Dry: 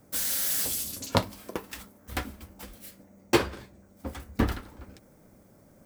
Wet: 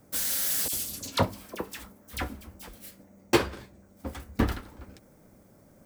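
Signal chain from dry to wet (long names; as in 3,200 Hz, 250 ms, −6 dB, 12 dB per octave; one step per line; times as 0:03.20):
0:00.68–0:02.69: all-pass dispersion lows, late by 49 ms, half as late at 1,700 Hz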